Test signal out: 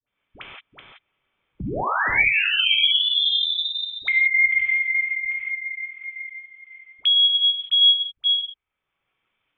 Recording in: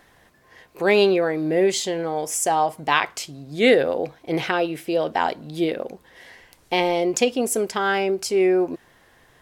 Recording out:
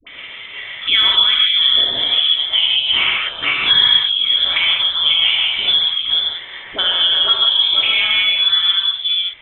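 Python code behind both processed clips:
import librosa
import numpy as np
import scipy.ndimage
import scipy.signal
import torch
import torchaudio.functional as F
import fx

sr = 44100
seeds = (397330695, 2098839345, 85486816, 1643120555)

y = fx.reverse_delay(x, sr, ms=267, wet_db=-4.5)
y = fx.peak_eq(y, sr, hz=1300.0, db=6.5, octaves=0.74)
y = fx.rotary(y, sr, hz=5.5)
y = fx.rev_gated(y, sr, seeds[0], gate_ms=200, shape='flat', drr_db=-3.5)
y = fx.dynamic_eq(y, sr, hz=470.0, q=3.3, threshold_db=-36.0, ratio=4.0, max_db=8)
y = scipy.signal.sosfilt(scipy.signal.butter(4, 190.0, 'highpass', fs=sr, output='sos'), y)
y = fx.small_body(y, sr, hz=(660.0, 1500.0, 2500.0), ring_ms=20, db=7)
y = fx.freq_invert(y, sr, carrier_hz=3800)
y = fx.dispersion(y, sr, late='highs', ms=70.0, hz=580.0)
y = fx.band_squash(y, sr, depth_pct=70)
y = y * 10.0 ** (-3.0 / 20.0)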